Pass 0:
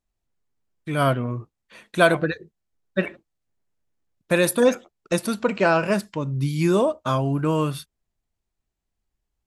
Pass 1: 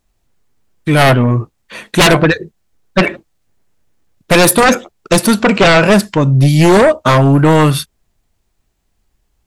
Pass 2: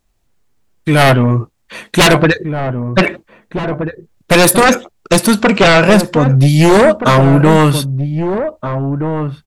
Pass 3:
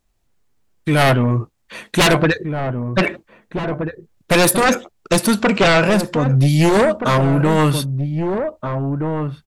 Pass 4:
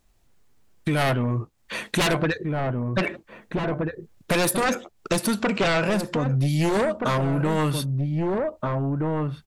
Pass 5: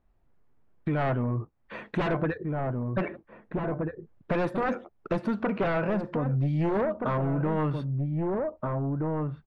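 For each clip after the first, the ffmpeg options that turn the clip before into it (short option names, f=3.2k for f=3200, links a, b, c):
-af "aeval=exprs='0.631*sin(PI/2*4.47*val(0)/0.631)':c=same"
-filter_complex "[0:a]asplit=2[a][b];[b]adelay=1574,volume=-8dB,highshelf=f=4k:g=-35.4[c];[a][c]amix=inputs=2:normalize=0"
-af "alimiter=level_in=4dB:limit=-1dB:release=50:level=0:latency=1,volume=-8dB"
-af "acompressor=threshold=-31dB:ratio=2.5,volume=4dB"
-af "lowpass=1.5k,volume=-4dB"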